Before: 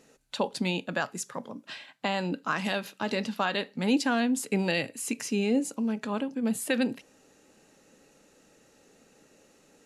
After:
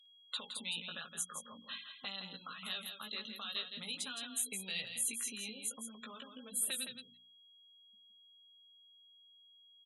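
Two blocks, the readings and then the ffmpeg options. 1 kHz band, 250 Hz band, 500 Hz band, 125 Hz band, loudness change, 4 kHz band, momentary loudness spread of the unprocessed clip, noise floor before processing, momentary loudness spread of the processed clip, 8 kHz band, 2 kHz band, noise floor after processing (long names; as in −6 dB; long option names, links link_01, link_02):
−18.5 dB, −24.0 dB, −24.0 dB, −22.0 dB, −10.5 dB, −3.0 dB, 11 LU, −62 dBFS, 11 LU, −0.5 dB, −13.0 dB, −64 dBFS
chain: -filter_complex "[0:a]superequalizer=6b=0.355:10b=2.51:13b=1.78:14b=0.398:16b=2.82,flanger=delay=15.5:depth=2.9:speed=0.45,acrossover=split=140|3000[link_01][link_02][link_03];[link_02]acompressor=threshold=-36dB:ratio=10[link_04];[link_01][link_04][link_03]amix=inputs=3:normalize=0,afftfilt=real='re*gte(hypot(re,im),0.00891)':imag='im*gte(hypot(re,im),0.00891)':win_size=1024:overlap=0.75,bandreject=frequency=60:width_type=h:width=6,bandreject=frequency=120:width_type=h:width=6,bandreject=frequency=180:width_type=h:width=6,bandreject=frequency=240:width_type=h:width=6,bandreject=frequency=300:width_type=h:width=6,bandreject=frequency=360:width_type=h:width=6,acrossover=split=2000[link_05][link_06];[link_05]acompressor=threshold=-52dB:ratio=4[link_07];[link_07][link_06]amix=inputs=2:normalize=0,aeval=exprs='val(0)+0.001*sin(2*PI*3300*n/s)':channel_layout=same,highpass=frequency=40:width=0.5412,highpass=frequency=40:width=1.3066,highshelf=frequency=8400:gain=-3.5,aecho=1:1:166:0.422,volume=-1dB" -ar 48000 -c:a libopus -b:a 96k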